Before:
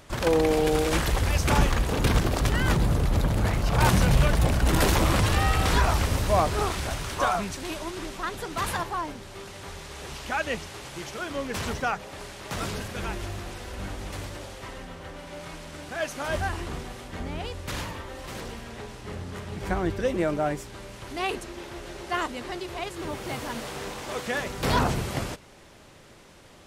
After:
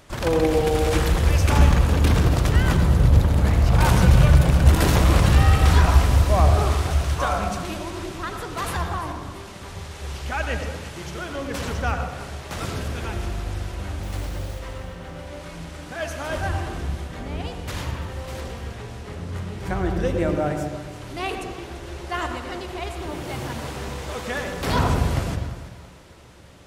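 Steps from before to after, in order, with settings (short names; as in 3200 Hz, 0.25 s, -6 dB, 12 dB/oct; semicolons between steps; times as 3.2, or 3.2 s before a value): 14.03–14.59 requantised 8-bit, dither none; thinning echo 0.339 s, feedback 45%, level -15.5 dB; on a send at -5 dB: reverb RT60 1.1 s, pre-delay 76 ms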